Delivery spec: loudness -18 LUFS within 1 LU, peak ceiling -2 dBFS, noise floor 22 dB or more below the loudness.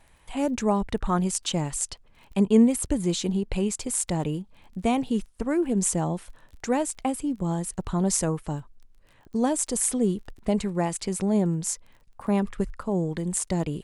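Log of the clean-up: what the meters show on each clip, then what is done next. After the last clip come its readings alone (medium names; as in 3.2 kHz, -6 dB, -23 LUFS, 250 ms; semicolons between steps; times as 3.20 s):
tick rate 24 per s; loudness -26.5 LUFS; peak level -8.0 dBFS; loudness target -18.0 LUFS
-> de-click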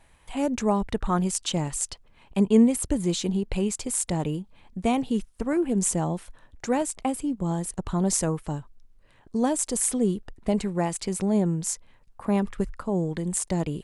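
tick rate 0 per s; loudness -26.5 LUFS; peak level -8.0 dBFS; loudness target -18.0 LUFS
-> trim +8.5 dB; peak limiter -2 dBFS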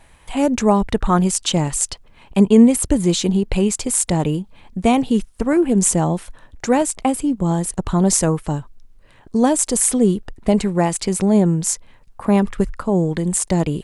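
loudness -18.0 LUFS; peak level -2.0 dBFS; noise floor -49 dBFS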